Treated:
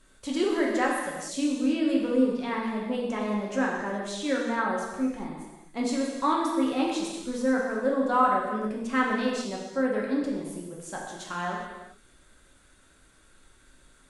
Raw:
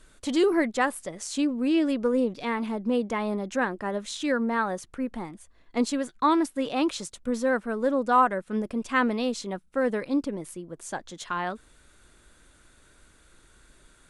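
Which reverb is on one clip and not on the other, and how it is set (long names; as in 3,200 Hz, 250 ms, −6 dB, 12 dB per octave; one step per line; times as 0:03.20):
reverb whose tail is shaped and stops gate 460 ms falling, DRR −3 dB
level −5.5 dB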